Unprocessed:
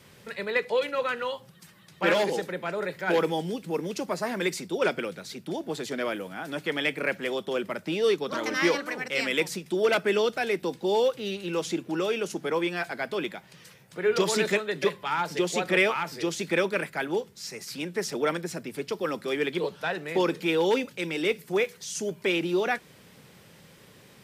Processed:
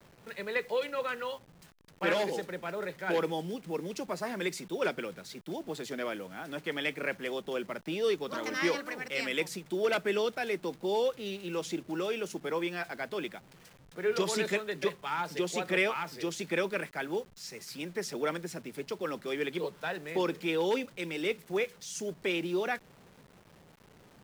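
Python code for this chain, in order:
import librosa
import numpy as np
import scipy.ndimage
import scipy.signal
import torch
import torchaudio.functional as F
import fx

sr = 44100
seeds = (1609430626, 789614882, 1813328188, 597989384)

y = fx.delta_hold(x, sr, step_db=-46.5)
y = F.gain(torch.from_numpy(y), -5.5).numpy()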